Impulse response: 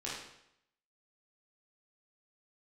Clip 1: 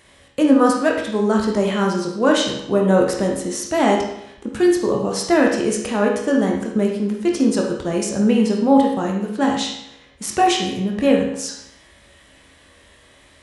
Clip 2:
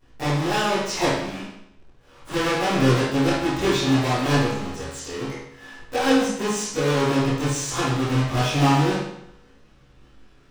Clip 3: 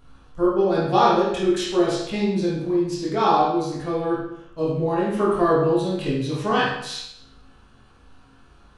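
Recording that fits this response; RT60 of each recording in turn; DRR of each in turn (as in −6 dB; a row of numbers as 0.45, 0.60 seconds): 3; 0.75, 0.75, 0.75 seconds; −0.5, −16.0, −7.5 decibels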